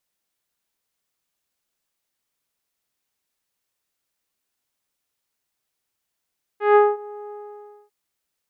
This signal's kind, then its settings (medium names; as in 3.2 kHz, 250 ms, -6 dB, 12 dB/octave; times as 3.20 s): synth note saw G#4 24 dB/octave, low-pass 1.1 kHz, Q 0.79, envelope 1 oct, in 0.33 s, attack 157 ms, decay 0.21 s, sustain -23.5 dB, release 0.59 s, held 0.71 s